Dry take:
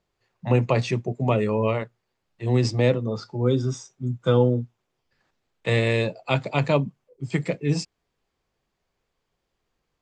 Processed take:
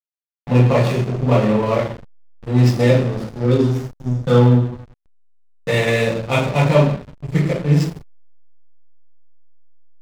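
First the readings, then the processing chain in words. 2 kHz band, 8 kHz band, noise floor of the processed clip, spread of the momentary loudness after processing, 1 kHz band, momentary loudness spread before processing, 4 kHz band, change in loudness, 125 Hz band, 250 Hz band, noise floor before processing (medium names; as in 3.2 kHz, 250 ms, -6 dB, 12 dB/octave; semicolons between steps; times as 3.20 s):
+5.5 dB, +3.5 dB, -78 dBFS, 11 LU, +6.0 dB, 12 LU, +4.5 dB, +6.5 dB, +8.0 dB, +7.5 dB, -79 dBFS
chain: two-slope reverb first 0.68 s, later 3.1 s, from -20 dB, DRR -9 dB; hysteresis with a dead band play -17.5 dBFS; trim -1.5 dB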